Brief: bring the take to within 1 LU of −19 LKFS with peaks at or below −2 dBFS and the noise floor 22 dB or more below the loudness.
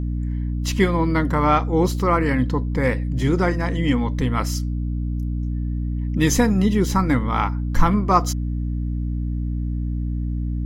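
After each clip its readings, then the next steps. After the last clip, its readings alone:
mains hum 60 Hz; hum harmonics up to 300 Hz; level of the hum −21 dBFS; integrated loudness −22.0 LKFS; sample peak −4.0 dBFS; target loudness −19.0 LKFS
→ hum removal 60 Hz, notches 5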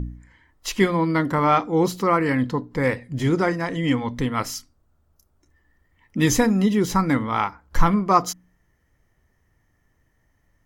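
mains hum none found; integrated loudness −22.0 LKFS; sample peak −4.0 dBFS; target loudness −19.0 LKFS
→ level +3 dB
brickwall limiter −2 dBFS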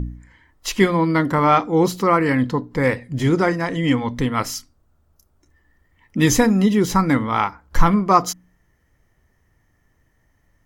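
integrated loudness −19.0 LKFS; sample peak −2.0 dBFS; background noise floor −64 dBFS

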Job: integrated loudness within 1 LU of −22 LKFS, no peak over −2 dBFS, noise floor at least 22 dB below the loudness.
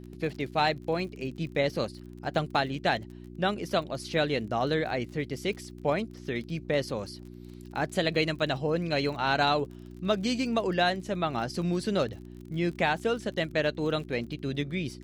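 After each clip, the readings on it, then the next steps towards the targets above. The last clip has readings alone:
crackle rate 36 per second; mains hum 60 Hz; hum harmonics up to 360 Hz; level of the hum −42 dBFS; integrated loudness −29.5 LKFS; sample peak −12.5 dBFS; target loudness −22.0 LKFS
→ click removal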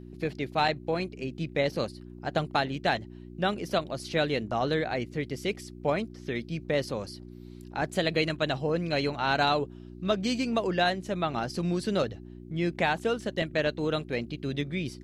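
crackle rate 0.067 per second; mains hum 60 Hz; hum harmonics up to 360 Hz; level of the hum −42 dBFS
→ hum removal 60 Hz, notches 6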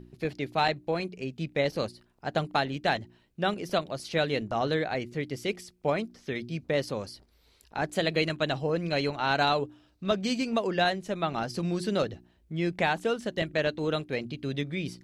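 mains hum none found; integrated loudness −30.0 LKFS; sample peak −12.5 dBFS; target loudness −22.0 LKFS
→ level +8 dB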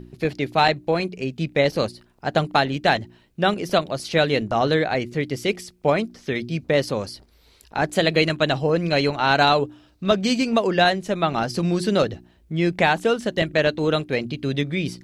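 integrated loudness −22.0 LKFS; sample peak −4.5 dBFS; background noise floor −57 dBFS

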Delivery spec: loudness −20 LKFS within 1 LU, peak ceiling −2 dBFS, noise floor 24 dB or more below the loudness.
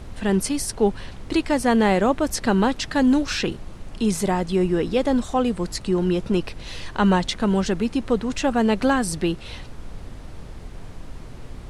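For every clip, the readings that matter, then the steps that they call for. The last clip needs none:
background noise floor −39 dBFS; target noise floor −46 dBFS; integrated loudness −22.0 LKFS; sample peak −7.0 dBFS; target loudness −20.0 LKFS
→ noise reduction from a noise print 7 dB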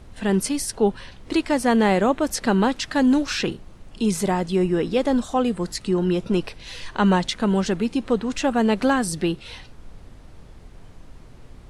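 background noise floor −46 dBFS; integrated loudness −22.0 LKFS; sample peak −7.5 dBFS; target loudness −20.0 LKFS
→ level +2 dB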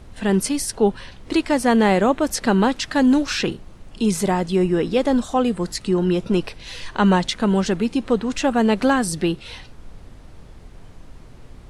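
integrated loudness −20.0 LKFS; sample peak −5.5 dBFS; background noise floor −44 dBFS

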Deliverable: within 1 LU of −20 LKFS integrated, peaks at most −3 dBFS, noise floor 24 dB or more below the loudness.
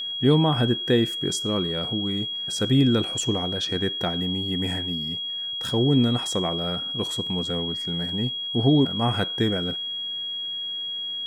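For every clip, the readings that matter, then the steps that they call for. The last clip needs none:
interfering tone 3,300 Hz; level of the tone −28 dBFS; integrated loudness −24.0 LKFS; sample peak −7.0 dBFS; target loudness −20.0 LKFS
→ notch filter 3,300 Hz, Q 30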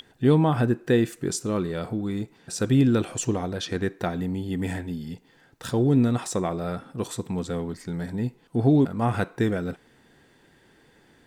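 interfering tone none found; integrated loudness −25.5 LKFS; sample peak −7.5 dBFS; target loudness −20.0 LKFS
→ level +5.5 dB
brickwall limiter −3 dBFS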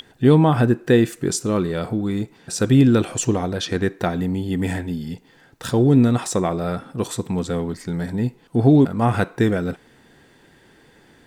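integrated loudness −20.0 LKFS; sample peak −3.0 dBFS; background noise floor −54 dBFS

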